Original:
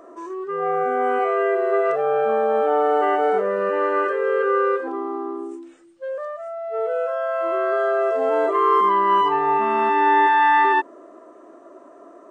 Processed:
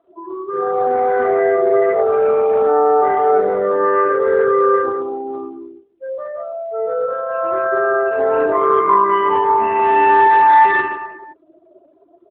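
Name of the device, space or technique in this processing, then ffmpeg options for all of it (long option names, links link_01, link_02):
mobile call with aggressive noise cancelling: -af "highpass=110,aecho=1:1:70|154|254.8|375.8|520.9:0.631|0.398|0.251|0.158|0.1,afftdn=noise_reduction=23:noise_floor=-29,volume=2.5dB" -ar 8000 -c:a libopencore_amrnb -b:a 12200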